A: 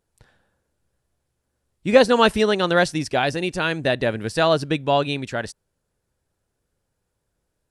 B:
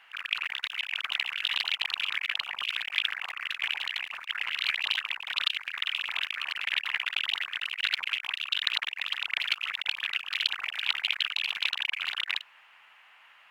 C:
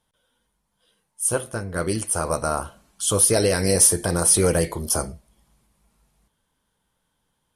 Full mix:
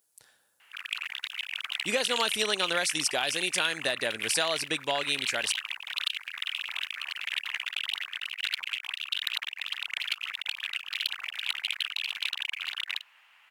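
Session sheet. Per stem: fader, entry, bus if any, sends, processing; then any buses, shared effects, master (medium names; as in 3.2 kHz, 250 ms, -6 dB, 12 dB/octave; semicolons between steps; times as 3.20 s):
-4.5 dB, 0.00 s, no send, high-pass 690 Hz 6 dB/octave; treble shelf 7.9 kHz +11.5 dB; compression 6:1, threshold -22 dBFS, peak gain reduction 10.5 dB
-6.0 dB, 0.60 s, no send, saturation -14.5 dBFS, distortion -20 dB
mute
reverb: none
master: treble shelf 3.5 kHz +10 dB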